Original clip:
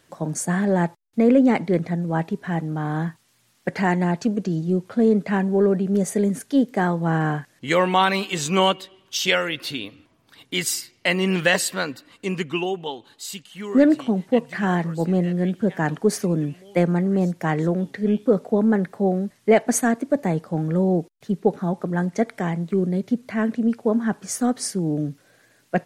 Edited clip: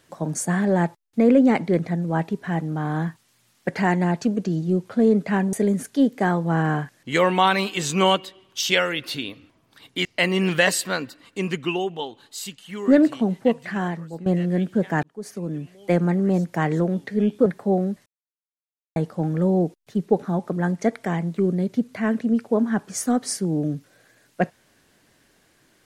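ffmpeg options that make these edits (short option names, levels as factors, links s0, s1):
-filter_complex "[0:a]asplit=8[s0][s1][s2][s3][s4][s5][s6][s7];[s0]atrim=end=5.532[s8];[s1]atrim=start=6.088:end=10.612[s9];[s2]atrim=start=10.918:end=15.13,asetpts=PTS-STARTPTS,afade=t=out:st=3.392:d=0.82:silence=0.16788[s10];[s3]atrim=start=15.13:end=15.9,asetpts=PTS-STARTPTS,afade=t=in:d=0.004:c=hsin:silence=0.16788,afade=t=out:st=0.766:d=0.004:c=hsin[s11];[s4]atrim=start=15.9:end=18.332,asetpts=PTS-STARTPTS,afade=t=in:d=0.99[s12];[s5]atrim=start=18.798:end=19.4,asetpts=PTS-STARTPTS,afade=t=out:st=0.598:d=0.004:c=hsin[s13];[s6]atrim=start=19.4:end=20.3,asetpts=PTS-STARTPTS,volume=0[s14];[s7]atrim=start=20.3,asetpts=PTS-STARTPTS,afade=t=in:d=0.004:c=hsin[s15];[s8][s9]acrossfade=d=0.004:c1=hsin:c2=hsin[s16];[s10][s11][s12]concat=n=3:v=0:a=1[s17];[s16][s17]acrossfade=d=0.004:c1=hsin:c2=hsin[s18];[s13][s14][s15]concat=n=3:v=0:a=1[s19];[s18][s19]acrossfade=d=0.004:c1=hsin:c2=hsin"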